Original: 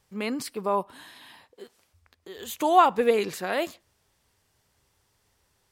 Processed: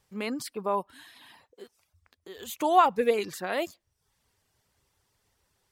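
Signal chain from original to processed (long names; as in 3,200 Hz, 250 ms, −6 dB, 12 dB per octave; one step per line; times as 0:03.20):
reverb reduction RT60 0.55 s
level −2 dB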